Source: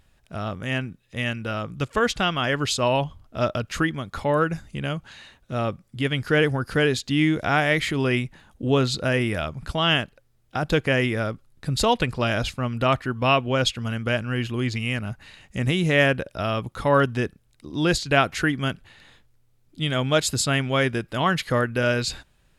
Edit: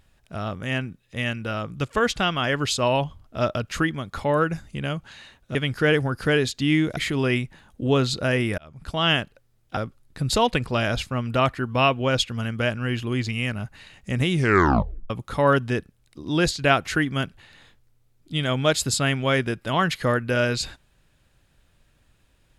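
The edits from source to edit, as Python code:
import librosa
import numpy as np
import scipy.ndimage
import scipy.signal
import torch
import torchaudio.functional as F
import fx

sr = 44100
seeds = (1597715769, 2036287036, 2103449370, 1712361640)

y = fx.edit(x, sr, fx.cut(start_s=5.55, length_s=0.49),
    fx.cut(start_s=7.46, length_s=0.32),
    fx.fade_in_span(start_s=9.39, length_s=0.47),
    fx.cut(start_s=10.58, length_s=0.66),
    fx.tape_stop(start_s=15.78, length_s=0.79), tone=tone)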